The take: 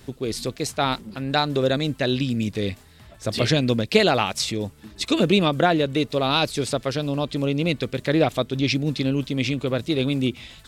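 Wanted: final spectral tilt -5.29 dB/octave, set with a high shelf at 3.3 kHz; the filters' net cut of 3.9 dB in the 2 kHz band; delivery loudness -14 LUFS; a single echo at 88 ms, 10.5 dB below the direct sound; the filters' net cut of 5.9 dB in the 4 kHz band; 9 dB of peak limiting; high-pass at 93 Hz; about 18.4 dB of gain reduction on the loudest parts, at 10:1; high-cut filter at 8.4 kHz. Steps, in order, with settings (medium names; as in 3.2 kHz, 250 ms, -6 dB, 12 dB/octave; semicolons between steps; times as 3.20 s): high-pass 93 Hz; low-pass 8.4 kHz; peaking EQ 2 kHz -4 dB; treble shelf 3.3 kHz +3.5 dB; peaking EQ 4 kHz -8 dB; compression 10:1, threshold -32 dBFS; peak limiter -28.5 dBFS; delay 88 ms -10.5 dB; trim +24.5 dB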